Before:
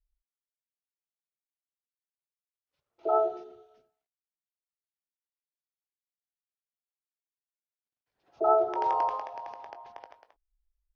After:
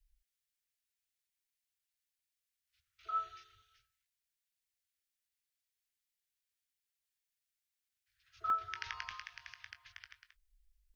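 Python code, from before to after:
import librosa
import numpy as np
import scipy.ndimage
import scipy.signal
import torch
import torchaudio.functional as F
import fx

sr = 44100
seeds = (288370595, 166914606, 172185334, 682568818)

y = scipy.signal.sosfilt(scipy.signal.cheby2(4, 40, [170.0, 910.0], 'bandstop', fs=sr, output='sos'), x)
y = fx.buffer_crackle(y, sr, first_s=0.57, period_s=0.61, block=64, kind='zero')
y = y * 10.0 ** (6.5 / 20.0)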